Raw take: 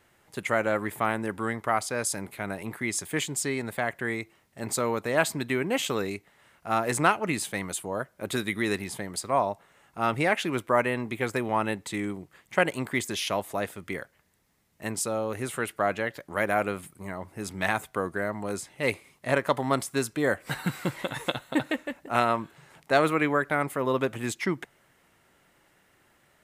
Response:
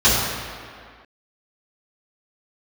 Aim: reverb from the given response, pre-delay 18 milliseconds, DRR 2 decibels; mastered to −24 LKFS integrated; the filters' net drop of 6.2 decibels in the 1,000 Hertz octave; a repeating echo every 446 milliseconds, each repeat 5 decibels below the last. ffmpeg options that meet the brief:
-filter_complex "[0:a]equalizer=frequency=1000:width_type=o:gain=-9,aecho=1:1:446|892|1338|1784|2230|2676|3122:0.562|0.315|0.176|0.0988|0.0553|0.031|0.0173,asplit=2[link_01][link_02];[1:a]atrim=start_sample=2205,adelay=18[link_03];[link_02][link_03]afir=irnorm=-1:irlink=0,volume=-25dB[link_04];[link_01][link_04]amix=inputs=2:normalize=0,volume=3dB"

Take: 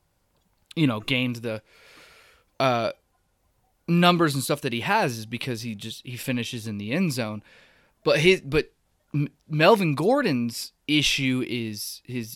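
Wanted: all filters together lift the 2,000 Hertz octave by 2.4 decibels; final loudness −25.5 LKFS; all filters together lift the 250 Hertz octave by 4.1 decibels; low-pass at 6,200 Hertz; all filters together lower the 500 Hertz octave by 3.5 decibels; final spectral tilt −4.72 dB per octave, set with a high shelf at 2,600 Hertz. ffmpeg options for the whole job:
ffmpeg -i in.wav -af "lowpass=6200,equalizer=frequency=250:width_type=o:gain=7.5,equalizer=frequency=500:width_type=o:gain=-7.5,equalizer=frequency=2000:width_type=o:gain=7.5,highshelf=frequency=2600:gain=-7.5,volume=-2.5dB" out.wav

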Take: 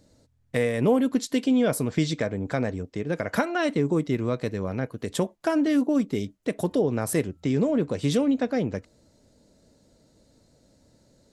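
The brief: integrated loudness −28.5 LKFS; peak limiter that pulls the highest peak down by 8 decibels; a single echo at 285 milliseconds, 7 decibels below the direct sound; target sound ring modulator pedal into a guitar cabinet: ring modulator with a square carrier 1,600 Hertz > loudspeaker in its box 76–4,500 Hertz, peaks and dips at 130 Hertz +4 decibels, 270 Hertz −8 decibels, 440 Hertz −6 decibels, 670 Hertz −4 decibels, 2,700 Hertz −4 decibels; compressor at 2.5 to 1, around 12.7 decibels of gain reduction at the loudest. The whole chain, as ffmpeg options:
ffmpeg -i in.wav -af "acompressor=threshold=-38dB:ratio=2.5,alimiter=level_in=4.5dB:limit=-24dB:level=0:latency=1,volume=-4.5dB,aecho=1:1:285:0.447,aeval=exprs='val(0)*sgn(sin(2*PI*1600*n/s))':channel_layout=same,highpass=76,equalizer=frequency=130:width_type=q:width=4:gain=4,equalizer=frequency=270:width_type=q:width=4:gain=-8,equalizer=frequency=440:width_type=q:width=4:gain=-6,equalizer=frequency=670:width_type=q:width=4:gain=-4,equalizer=frequency=2700:width_type=q:width=4:gain=-4,lowpass=frequency=4500:width=0.5412,lowpass=frequency=4500:width=1.3066,volume=8.5dB" out.wav

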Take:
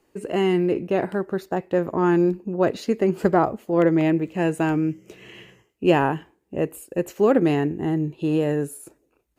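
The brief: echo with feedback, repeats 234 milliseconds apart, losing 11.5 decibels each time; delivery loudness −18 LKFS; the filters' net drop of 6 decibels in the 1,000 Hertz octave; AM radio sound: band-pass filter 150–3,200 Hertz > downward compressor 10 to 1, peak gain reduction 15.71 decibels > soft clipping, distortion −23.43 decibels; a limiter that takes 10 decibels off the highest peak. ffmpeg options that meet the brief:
ffmpeg -i in.wav -af "equalizer=frequency=1000:width_type=o:gain=-8.5,alimiter=limit=-15.5dB:level=0:latency=1,highpass=150,lowpass=3200,aecho=1:1:234|468|702:0.266|0.0718|0.0194,acompressor=threshold=-34dB:ratio=10,asoftclip=threshold=-26.5dB,volume=21.5dB" out.wav

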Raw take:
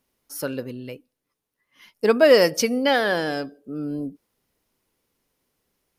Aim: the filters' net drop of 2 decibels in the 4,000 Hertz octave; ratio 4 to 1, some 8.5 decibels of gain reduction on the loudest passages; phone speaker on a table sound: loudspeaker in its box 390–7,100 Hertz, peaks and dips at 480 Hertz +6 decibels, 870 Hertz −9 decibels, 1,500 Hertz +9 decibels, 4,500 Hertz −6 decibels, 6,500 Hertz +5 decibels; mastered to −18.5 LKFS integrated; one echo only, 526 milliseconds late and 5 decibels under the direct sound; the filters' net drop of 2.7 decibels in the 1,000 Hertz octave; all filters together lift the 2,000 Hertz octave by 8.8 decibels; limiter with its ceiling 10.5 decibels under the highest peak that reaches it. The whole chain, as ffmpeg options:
ffmpeg -i in.wav -af "equalizer=frequency=1000:width_type=o:gain=-5.5,equalizer=frequency=2000:width_type=o:gain=8.5,equalizer=frequency=4000:width_type=o:gain=-5,acompressor=threshold=-20dB:ratio=4,alimiter=limit=-22dB:level=0:latency=1,highpass=frequency=390:width=0.5412,highpass=frequency=390:width=1.3066,equalizer=frequency=480:width_type=q:width=4:gain=6,equalizer=frequency=870:width_type=q:width=4:gain=-9,equalizer=frequency=1500:width_type=q:width=4:gain=9,equalizer=frequency=4500:width_type=q:width=4:gain=-6,equalizer=frequency=6500:width_type=q:width=4:gain=5,lowpass=frequency=7100:width=0.5412,lowpass=frequency=7100:width=1.3066,aecho=1:1:526:0.562,volume=12dB" out.wav

